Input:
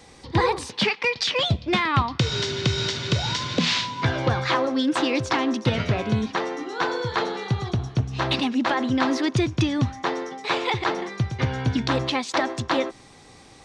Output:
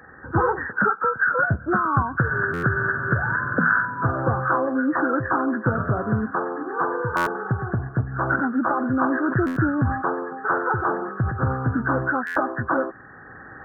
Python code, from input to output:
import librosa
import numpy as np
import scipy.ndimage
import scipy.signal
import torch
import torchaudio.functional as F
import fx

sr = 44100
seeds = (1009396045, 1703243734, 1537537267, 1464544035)

y = fx.freq_compress(x, sr, knee_hz=1100.0, ratio=4.0)
y = fx.recorder_agc(y, sr, target_db=-15.0, rise_db_per_s=7.5, max_gain_db=30)
y = scipy.signal.sosfilt(scipy.signal.butter(2, 53.0, 'highpass', fs=sr, output='sos'), y)
y = fx.buffer_glitch(y, sr, at_s=(2.53, 7.16, 9.46, 12.26), block=512, repeats=8)
y = fx.sustainer(y, sr, db_per_s=72.0, at=(8.98, 11.63))